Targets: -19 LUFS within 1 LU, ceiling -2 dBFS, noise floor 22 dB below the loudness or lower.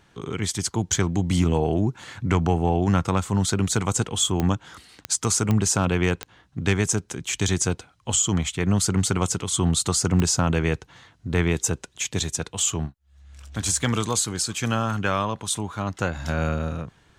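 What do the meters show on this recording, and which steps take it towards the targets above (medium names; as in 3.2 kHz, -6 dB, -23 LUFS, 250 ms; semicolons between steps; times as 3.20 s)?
clicks found 5; loudness -24.0 LUFS; peak level -8.5 dBFS; loudness target -19.0 LUFS
-> de-click; trim +5 dB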